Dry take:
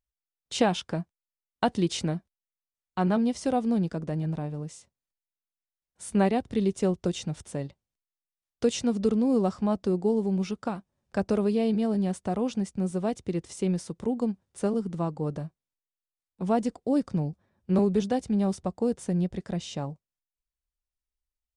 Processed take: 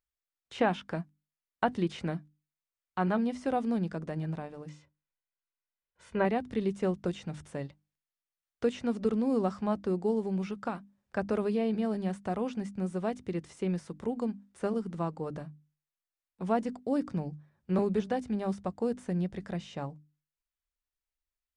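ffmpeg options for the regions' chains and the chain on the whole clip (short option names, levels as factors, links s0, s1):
-filter_complex "[0:a]asettb=1/sr,asplit=3[s0][s1][s2];[s0]atrim=end=4.694[s3];[s1]atrim=start=4.69:end=6.25,asetpts=PTS-STARTPTS,afade=t=in:d=0.004:c=qsin,afade=t=out:st=1.556:d=0.004:c=qsin,lowpass=3300,aecho=1:1:2:0.44,atrim=end_sample=68796[s4];[s2]atrim=start=6.246[s5];[s3][s4]acrossfade=d=0.004:c1=hsin:c2=qsin[s6];[s6][s5]acrossfade=d=0.004:c1=qsin:c2=hsin,acrossover=split=2500[s7][s8];[s8]acompressor=threshold=0.00355:ratio=4:attack=1:release=60[s9];[s7][s9]amix=inputs=2:normalize=0,equalizer=f=1700:t=o:w=1.7:g=6,bandreject=f=50:t=h:w=6,bandreject=f=100:t=h:w=6,bandreject=f=150:t=h:w=6,bandreject=f=200:t=h:w=6,bandreject=f=250:t=h:w=6,bandreject=f=300:t=h:w=6,volume=0.596"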